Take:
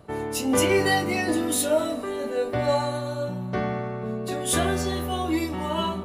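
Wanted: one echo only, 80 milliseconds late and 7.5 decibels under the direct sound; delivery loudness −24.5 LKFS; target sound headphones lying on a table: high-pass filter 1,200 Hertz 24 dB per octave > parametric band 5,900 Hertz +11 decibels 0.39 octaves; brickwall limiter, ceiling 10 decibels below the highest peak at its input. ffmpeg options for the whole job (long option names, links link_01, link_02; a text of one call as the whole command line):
ffmpeg -i in.wav -af "alimiter=limit=-19.5dB:level=0:latency=1,highpass=frequency=1200:width=0.5412,highpass=frequency=1200:width=1.3066,equalizer=frequency=5900:width_type=o:width=0.39:gain=11,aecho=1:1:80:0.422,volume=8dB" out.wav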